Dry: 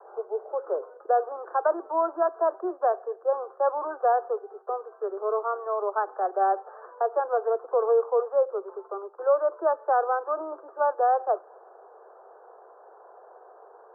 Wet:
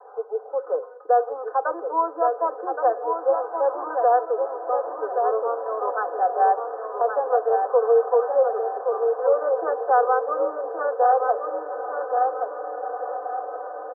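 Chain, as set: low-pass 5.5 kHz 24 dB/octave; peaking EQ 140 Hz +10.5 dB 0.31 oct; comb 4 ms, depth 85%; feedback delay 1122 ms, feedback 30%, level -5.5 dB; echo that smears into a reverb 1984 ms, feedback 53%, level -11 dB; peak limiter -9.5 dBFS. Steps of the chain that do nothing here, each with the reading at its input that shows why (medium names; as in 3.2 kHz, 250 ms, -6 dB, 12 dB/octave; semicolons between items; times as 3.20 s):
low-pass 5.5 kHz: input has nothing above 1.6 kHz; peaking EQ 140 Hz: input has nothing below 300 Hz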